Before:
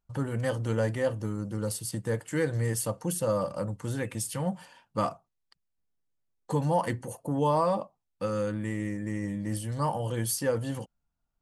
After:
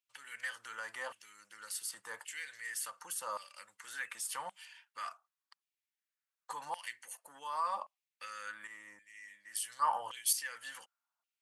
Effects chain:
dynamic equaliser 540 Hz, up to −6 dB, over −40 dBFS, Q 0.73
brickwall limiter −25.5 dBFS, peak gain reduction 6.5 dB
auto-filter high-pass saw down 0.89 Hz 940–2,700 Hz
0:08.67–0:10.33: multiband upward and downward expander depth 100%
level −2.5 dB

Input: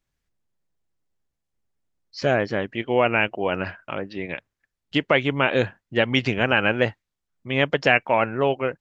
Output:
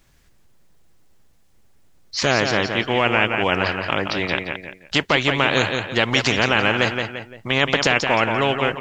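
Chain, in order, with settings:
brickwall limiter −8.5 dBFS, peak gain reduction 5.5 dB
repeating echo 172 ms, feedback 20%, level −10 dB
every bin compressed towards the loudest bin 2 to 1
level +6 dB

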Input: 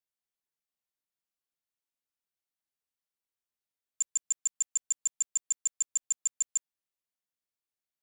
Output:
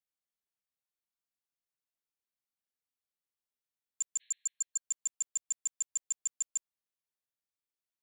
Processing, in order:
healed spectral selection 0:04.23–0:04.79, 1,600–4,300 Hz both
level −4.5 dB

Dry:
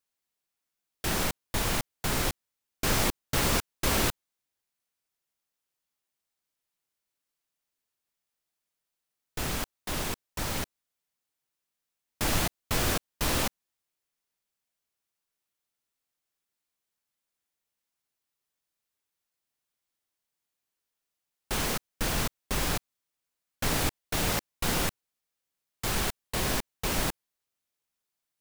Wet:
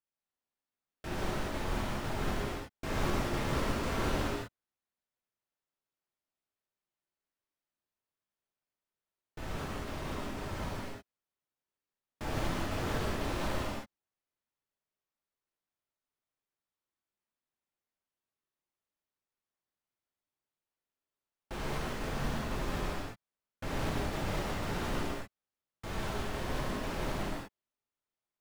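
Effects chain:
low-pass filter 1,600 Hz 6 dB per octave
reverb whose tail is shaped and stops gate 390 ms flat, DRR −6 dB
level −9 dB

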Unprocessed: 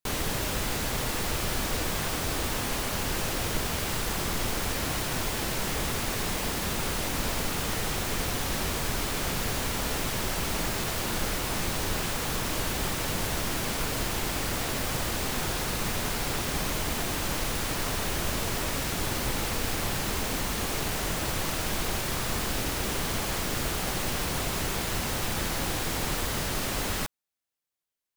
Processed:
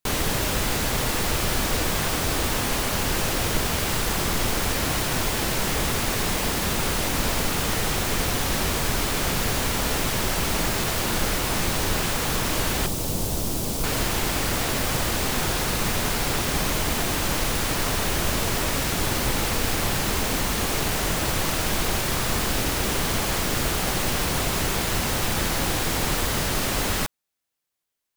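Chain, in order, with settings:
0:12.86–0:13.84: parametric band 1,800 Hz −14.5 dB 1.8 octaves
level +5.5 dB

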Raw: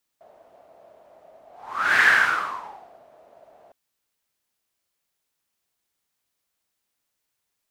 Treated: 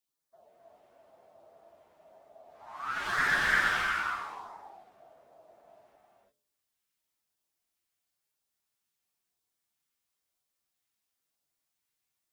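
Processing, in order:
one-sided soft clipper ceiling −12.5 dBFS
mains-hum notches 60/120/180/240/300/360/420/480/540/600 Hz
auto-filter notch sine 1.6 Hz 440–3,000 Hz
phase-vocoder stretch with locked phases 1.6×
reverb whose tail is shaped and stops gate 380 ms rising, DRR −1.5 dB
level −8 dB

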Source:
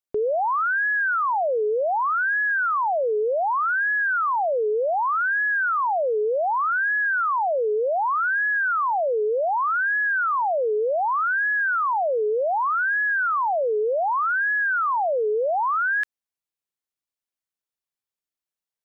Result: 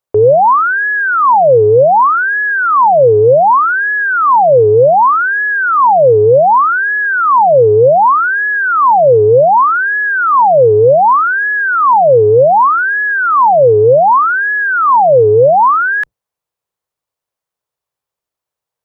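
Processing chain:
sub-octave generator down 2 octaves, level −3 dB
octave-band graphic EQ 125/250/500/1,000 Hz +9/−3/+10/+8 dB
level +5.5 dB

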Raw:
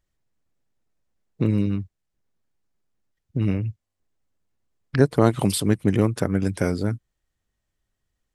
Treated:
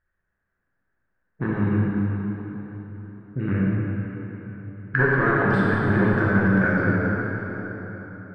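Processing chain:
0:01.50–0:03.54: parametric band 1,000 Hz −13.5 dB 0.44 octaves
hard clipping −14.5 dBFS, distortion −9 dB
low-pass with resonance 1,600 Hz, resonance Q 8.4
dense smooth reverb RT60 4.2 s, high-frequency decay 0.75×, DRR −7 dB
level −5.5 dB

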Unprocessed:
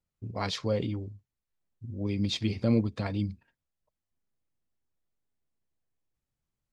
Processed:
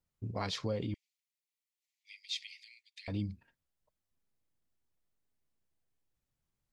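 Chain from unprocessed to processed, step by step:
downward compressor 2.5 to 1, threshold −34 dBFS, peak gain reduction 10.5 dB
0:00.94–0:03.08: Butterworth high-pass 1,900 Hz 96 dB per octave

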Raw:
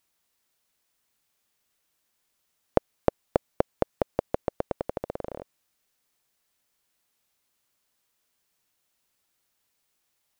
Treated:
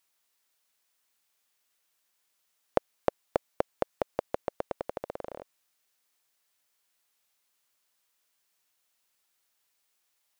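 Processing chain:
low-shelf EQ 370 Hz −11.5 dB

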